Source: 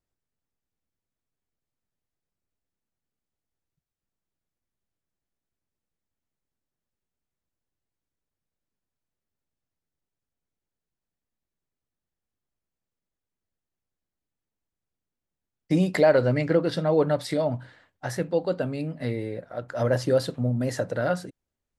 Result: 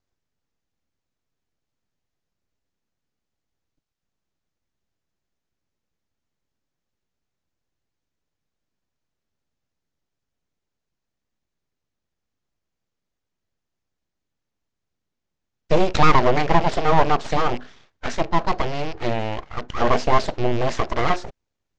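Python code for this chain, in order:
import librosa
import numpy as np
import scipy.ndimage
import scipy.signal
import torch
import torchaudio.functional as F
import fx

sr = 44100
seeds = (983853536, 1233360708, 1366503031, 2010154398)

y = fx.rattle_buzz(x, sr, strikes_db=-34.0, level_db=-31.0)
y = np.abs(y)
y = scipy.signal.sosfilt(scipy.signal.butter(8, 7100.0, 'lowpass', fs=sr, output='sos'), y)
y = fx.dynamic_eq(y, sr, hz=630.0, q=1.5, threshold_db=-40.0, ratio=4.0, max_db=5)
y = y * librosa.db_to_amplitude(6.5)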